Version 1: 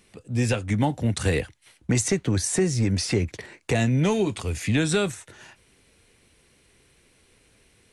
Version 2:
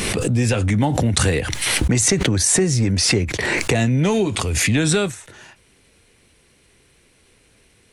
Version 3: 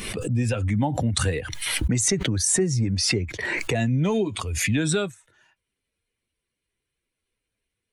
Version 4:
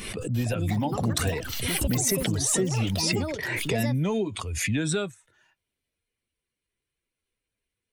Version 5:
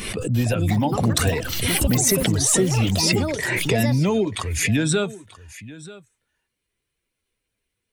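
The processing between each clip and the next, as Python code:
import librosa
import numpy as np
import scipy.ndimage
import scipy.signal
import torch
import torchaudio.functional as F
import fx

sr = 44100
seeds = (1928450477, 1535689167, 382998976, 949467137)

y1 = fx.pre_swell(x, sr, db_per_s=20.0)
y1 = y1 * 10.0 ** (3.5 / 20.0)
y2 = fx.bin_expand(y1, sr, power=1.5)
y2 = y2 * 10.0 ** (-3.0 / 20.0)
y3 = fx.echo_pitch(y2, sr, ms=345, semitones=6, count=3, db_per_echo=-6.0)
y3 = y3 * 10.0 ** (-3.5 / 20.0)
y4 = y3 + 10.0 ** (-18.5 / 20.0) * np.pad(y3, (int(935 * sr / 1000.0), 0))[:len(y3)]
y4 = y4 * 10.0 ** (6.0 / 20.0)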